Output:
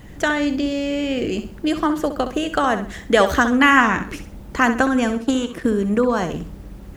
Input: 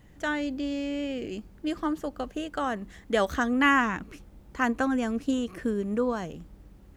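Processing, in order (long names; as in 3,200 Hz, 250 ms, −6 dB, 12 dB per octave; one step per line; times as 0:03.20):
0:05.15–0:05.65: power curve on the samples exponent 1.4
in parallel at 0 dB: downward compressor, threshold −35 dBFS, peak gain reduction 16.5 dB
on the sum: flutter between parallel walls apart 11.2 metres, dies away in 0.4 s
harmonic and percussive parts rebalanced percussive +4 dB
level +6 dB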